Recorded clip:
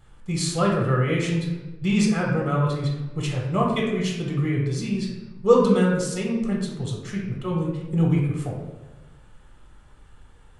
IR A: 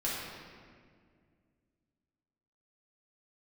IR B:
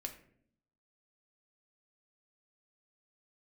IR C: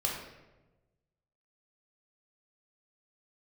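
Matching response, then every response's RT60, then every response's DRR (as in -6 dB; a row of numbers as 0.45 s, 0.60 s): C; 2.0 s, 0.65 s, 1.1 s; -7.5 dB, 3.5 dB, -3.0 dB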